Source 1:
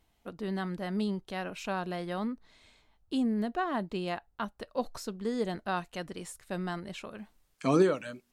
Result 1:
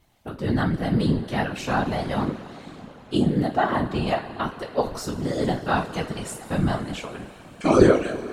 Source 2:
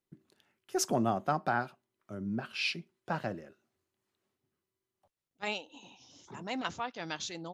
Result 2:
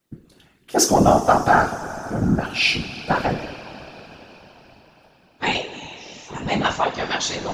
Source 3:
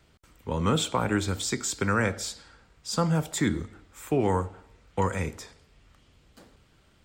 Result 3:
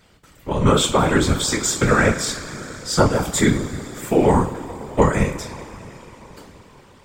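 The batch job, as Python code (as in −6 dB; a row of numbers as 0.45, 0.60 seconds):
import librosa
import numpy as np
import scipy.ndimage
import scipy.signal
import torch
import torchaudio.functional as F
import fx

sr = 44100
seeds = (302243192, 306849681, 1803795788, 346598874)

y = fx.rev_double_slope(x, sr, seeds[0], early_s=0.26, late_s=4.9, knee_db=-21, drr_db=0.5)
y = fx.whisperise(y, sr, seeds[1])
y = librosa.util.normalize(y) * 10.0 ** (-1.5 / 20.0)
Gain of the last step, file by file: +6.0, +12.0, +6.5 decibels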